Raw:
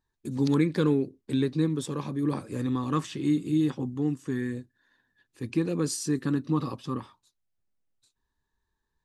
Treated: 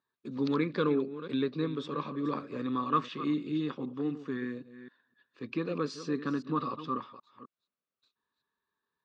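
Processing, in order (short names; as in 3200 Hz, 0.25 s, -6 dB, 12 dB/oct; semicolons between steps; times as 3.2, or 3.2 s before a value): reverse delay 0.257 s, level -13 dB; speaker cabinet 260–4000 Hz, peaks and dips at 330 Hz -6 dB, 820 Hz -8 dB, 1200 Hz +7 dB, 1900 Hz -4 dB; notch 3100 Hz, Q 19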